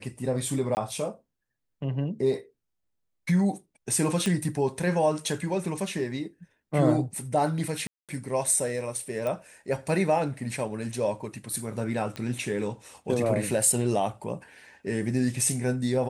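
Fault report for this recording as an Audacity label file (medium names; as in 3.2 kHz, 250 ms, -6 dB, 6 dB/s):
0.750000	0.770000	dropout 19 ms
4.260000	4.260000	pop -14 dBFS
7.870000	8.090000	dropout 217 ms
9.270000	9.270000	pop
12.160000	12.160000	pop -21 dBFS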